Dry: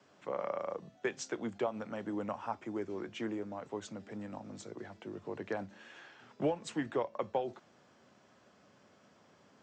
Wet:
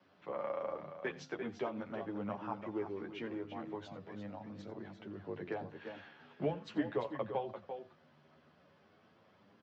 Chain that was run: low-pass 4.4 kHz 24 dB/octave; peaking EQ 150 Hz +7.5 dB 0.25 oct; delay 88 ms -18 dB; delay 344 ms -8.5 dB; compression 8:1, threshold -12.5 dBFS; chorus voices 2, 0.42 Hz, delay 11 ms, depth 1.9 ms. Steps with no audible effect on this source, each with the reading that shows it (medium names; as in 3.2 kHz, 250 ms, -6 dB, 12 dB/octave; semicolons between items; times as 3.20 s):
compression, threshold -12.5 dBFS: peak at its input -19.5 dBFS